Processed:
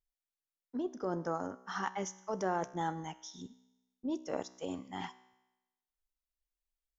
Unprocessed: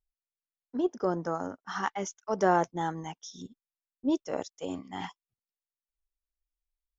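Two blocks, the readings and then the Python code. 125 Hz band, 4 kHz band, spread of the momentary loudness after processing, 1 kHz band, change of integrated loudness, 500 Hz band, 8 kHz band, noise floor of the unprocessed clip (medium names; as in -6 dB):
-5.0 dB, -4.0 dB, 11 LU, -6.5 dB, -7.0 dB, -7.0 dB, no reading, under -85 dBFS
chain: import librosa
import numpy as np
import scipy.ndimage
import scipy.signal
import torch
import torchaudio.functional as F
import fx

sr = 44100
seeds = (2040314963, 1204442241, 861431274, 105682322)

p1 = fx.over_compress(x, sr, threshold_db=-30.0, ratio=-0.5)
p2 = x + (p1 * librosa.db_to_amplitude(-0.5))
p3 = fx.comb_fb(p2, sr, f0_hz=63.0, decay_s=1.0, harmonics='all', damping=0.0, mix_pct=50)
y = p3 * librosa.db_to_amplitude(-5.5)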